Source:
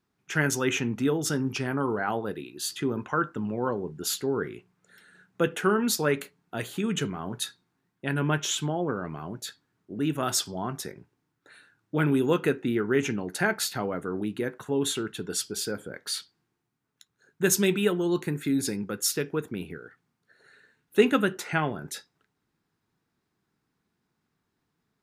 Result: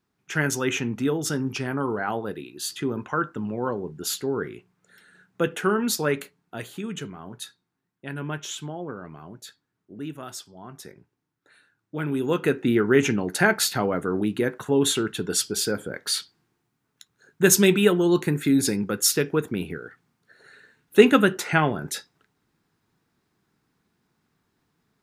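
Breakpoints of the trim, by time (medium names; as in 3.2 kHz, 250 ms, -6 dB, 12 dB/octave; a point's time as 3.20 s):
6.18 s +1 dB
7.03 s -5.5 dB
9.96 s -5.5 dB
10.49 s -13.5 dB
10.92 s -4.5 dB
12.03 s -4.5 dB
12.70 s +6 dB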